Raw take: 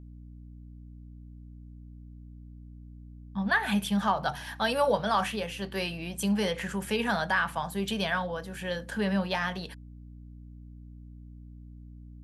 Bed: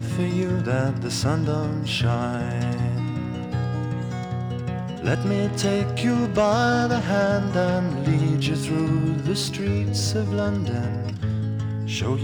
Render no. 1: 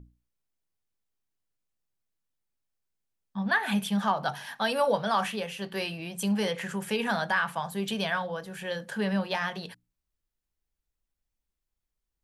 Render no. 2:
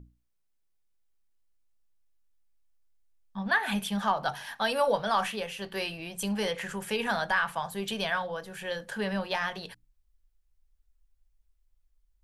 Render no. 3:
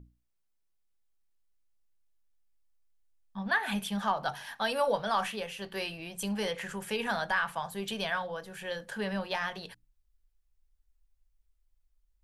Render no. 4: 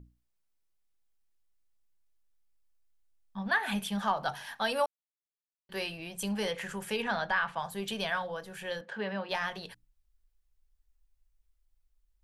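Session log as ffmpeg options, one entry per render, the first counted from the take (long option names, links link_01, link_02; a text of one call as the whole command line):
ffmpeg -i in.wav -af "bandreject=frequency=60:width_type=h:width=6,bandreject=frequency=120:width_type=h:width=6,bandreject=frequency=180:width_type=h:width=6,bandreject=frequency=240:width_type=h:width=6,bandreject=frequency=300:width_type=h:width=6" out.wav
ffmpeg -i in.wav -af "asubboost=boost=10:cutoff=52" out.wav
ffmpeg -i in.wav -af "volume=-2.5dB" out.wav
ffmpeg -i in.wav -filter_complex "[0:a]asettb=1/sr,asplit=3[link_01][link_02][link_03];[link_01]atrim=end=7.024[link_04];[link_02]atrim=start=7.02:end=7.59,asetpts=PTS-STARTPTS,afade=type=in:duration=0.004:curve=qsin,afade=type=out:start_time=0.566:duration=0.004:curve=qsin,lowpass=4700[link_05];[link_03]atrim=start=7.586[link_06];[link_04][link_05]acrossfade=duration=0.004:curve1=hsin:curve2=qsin[link_07];[link_07][link_06]acrossfade=duration=0.004:curve1=qsin:curve2=hsin,asettb=1/sr,asplit=3[link_08][link_09][link_10];[link_08]atrim=end=8.814[link_11];[link_09]atrim=start=8.81:end=9.29,asetpts=PTS-STARTPTS,afade=type=in:duration=0.004:curve=qsin,afade=type=out:start_time=0.476:duration=0.004:curve=qsin,highpass=210,lowpass=3300[link_12];[link_10]atrim=start=9.286[link_13];[link_11][link_12]acrossfade=duration=0.004:curve1=hsin:curve2=qsin[link_14];[link_14][link_13]acrossfade=duration=0.004:curve1=qsin:curve2=hsin,asplit=3[link_15][link_16][link_17];[link_15]atrim=end=4.86,asetpts=PTS-STARTPTS,afade=type=out:start_time=4.856:duration=0.004:curve=hsin[link_18];[link_16]atrim=start=4.86:end=5.69,asetpts=PTS-STARTPTS,volume=0[link_19];[link_17]atrim=start=5.69,asetpts=PTS-STARTPTS,afade=type=in:duration=0.004:curve=hsin[link_20];[link_18][link_19][link_20]concat=n=3:v=0:a=1" out.wav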